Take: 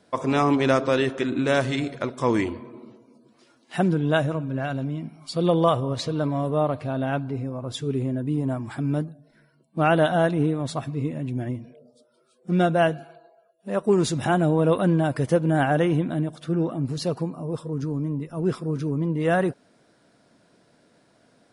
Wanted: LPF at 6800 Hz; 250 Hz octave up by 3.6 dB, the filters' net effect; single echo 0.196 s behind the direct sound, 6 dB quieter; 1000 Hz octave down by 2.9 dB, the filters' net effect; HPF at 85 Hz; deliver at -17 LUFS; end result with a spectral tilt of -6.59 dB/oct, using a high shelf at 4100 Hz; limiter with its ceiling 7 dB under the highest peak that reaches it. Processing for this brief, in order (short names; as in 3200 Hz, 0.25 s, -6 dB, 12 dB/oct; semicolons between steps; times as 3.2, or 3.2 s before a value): HPF 85 Hz; LPF 6800 Hz; bell 250 Hz +5.5 dB; bell 1000 Hz -5.5 dB; high shelf 4100 Hz +8 dB; limiter -13.5 dBFS; echo 0.196 s -6 dB; gain +6.5 dB